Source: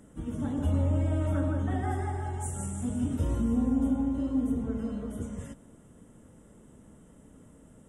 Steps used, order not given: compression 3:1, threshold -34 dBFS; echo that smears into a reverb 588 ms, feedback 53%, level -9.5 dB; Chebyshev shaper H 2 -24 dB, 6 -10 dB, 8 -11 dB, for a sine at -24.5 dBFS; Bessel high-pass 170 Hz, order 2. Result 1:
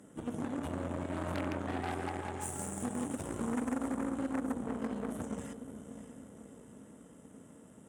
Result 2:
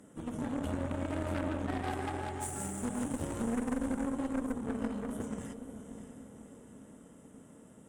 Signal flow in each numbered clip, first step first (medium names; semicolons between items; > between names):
compression > echo that smears into a reverb > Chebyshev shaper > Bessel high-pass; Bessel high-pass > compression > echo that smears into a reverb > Chebyshev shaper